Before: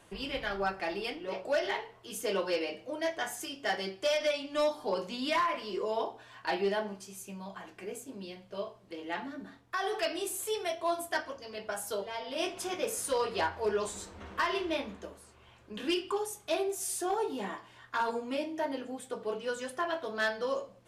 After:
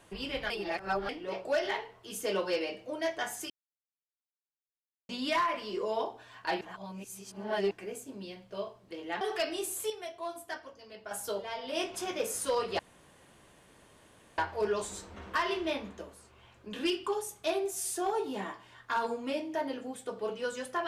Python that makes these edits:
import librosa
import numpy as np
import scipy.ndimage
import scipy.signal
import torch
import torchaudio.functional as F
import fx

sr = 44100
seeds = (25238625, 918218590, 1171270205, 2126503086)

y = fx.edit(x, sr, fx.reverse_span(start_s=0.5, length_s=0.59),
    fx.silence(start_s=3.5, length_s=1.59),
    fx.reverse_span(start_s=6.61, length_s=1.1),
    fx.cut(start_s=9.21, length_s=0.63),
    fx.clip_gain(start_s=10.53, length_s=1.21, db=-7.5),
    fx.insert_room_tone(at_s=13.42, length_s=1.59), tone=tone)